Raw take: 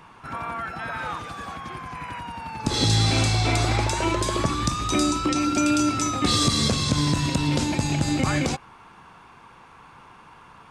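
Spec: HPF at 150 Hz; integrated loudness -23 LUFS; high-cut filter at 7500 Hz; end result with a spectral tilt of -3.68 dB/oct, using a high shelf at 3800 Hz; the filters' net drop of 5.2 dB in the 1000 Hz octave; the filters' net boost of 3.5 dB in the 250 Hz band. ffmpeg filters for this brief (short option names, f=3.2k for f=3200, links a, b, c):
-af "highpass=150,lowpass=7.5k,equalizer=f=250:t=o:g=5.5,equalizer=f=1k:t=o:g=-8,highshelf=f=3.8k:g=6,volume=-1.5dB"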